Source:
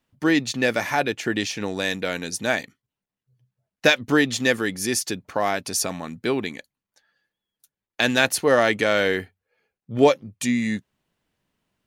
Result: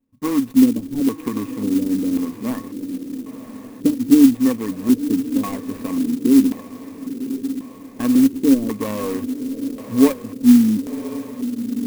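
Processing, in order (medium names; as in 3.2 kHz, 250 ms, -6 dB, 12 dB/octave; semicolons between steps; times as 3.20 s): median filter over 41 samples; rippled EQ curve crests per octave 0.92, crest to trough 7 dB; in parallel at -1 dB: compression, threshold -29 dBFS, peak gain reduction 17.5 dB; on the sum: small resonant body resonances 270/1100 Hz, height 17 dB, ringing for 85 ms; on a send: echo that smears into a reverb 1067 ms, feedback 59%, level -11 dB; on the sum: LFO low-pass square 0.92 Hz 310–3300 Hz; sampling jitter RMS 0.056 ms; trim -7 dB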